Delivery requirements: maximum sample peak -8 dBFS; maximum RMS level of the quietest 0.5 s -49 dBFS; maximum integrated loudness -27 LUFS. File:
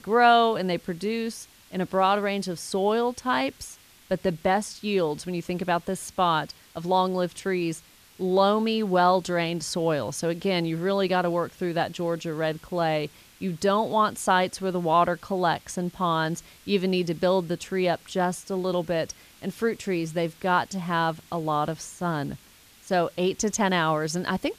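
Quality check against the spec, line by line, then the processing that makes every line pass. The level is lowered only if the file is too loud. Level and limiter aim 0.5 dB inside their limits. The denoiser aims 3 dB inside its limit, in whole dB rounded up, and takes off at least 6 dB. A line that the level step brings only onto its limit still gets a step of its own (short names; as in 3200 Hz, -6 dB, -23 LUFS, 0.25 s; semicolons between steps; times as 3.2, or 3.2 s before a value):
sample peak -7.0 dBFS: fail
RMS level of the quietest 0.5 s -53 dBFS: OK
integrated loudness -26.0 LUFS: fail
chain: gain -1.5 dB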